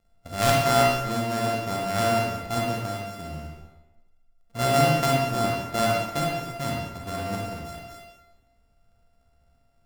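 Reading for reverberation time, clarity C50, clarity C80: 1.1 s, -0.5 dB, 2.5 dB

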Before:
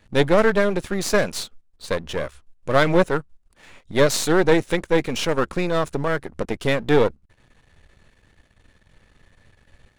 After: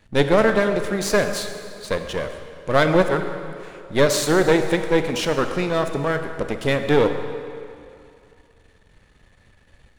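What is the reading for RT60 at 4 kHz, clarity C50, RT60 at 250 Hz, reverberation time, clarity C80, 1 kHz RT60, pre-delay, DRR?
2.0 s, 7.5 dB, 2.4 s, 2.5 s, 8.5 dB, 2.6 s, 27 ms, 7.0 dB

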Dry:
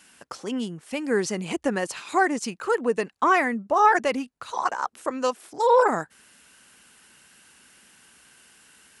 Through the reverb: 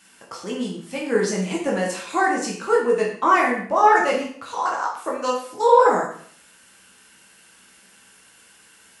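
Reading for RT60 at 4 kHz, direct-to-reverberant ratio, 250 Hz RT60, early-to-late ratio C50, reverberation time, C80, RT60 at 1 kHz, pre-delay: 0.50 s, -3.5 dB, 0.60 s, 4.5 dB, 0.55 s, 8.5 dB, 0.55 s, 6 ms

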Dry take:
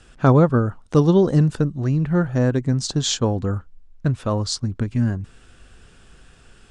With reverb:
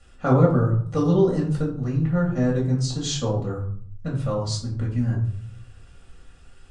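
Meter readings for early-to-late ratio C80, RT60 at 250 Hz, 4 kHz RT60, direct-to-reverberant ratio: 11.0 dB, 0.90 s, 0.35 s, -4.5 dB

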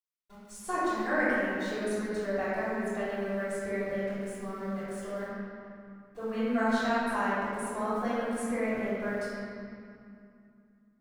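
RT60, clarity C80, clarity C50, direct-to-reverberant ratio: 2.6 s, -2.5 dB, -4.5 dB, -14.5 dB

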